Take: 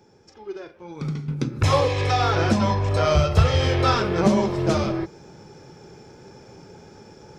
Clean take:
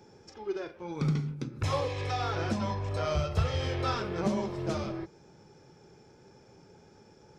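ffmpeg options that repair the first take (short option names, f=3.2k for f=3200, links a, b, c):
-af "asetnsamples=n=441:p=0,asendcmd='1.28 volume volume -11dB',volume=0dB"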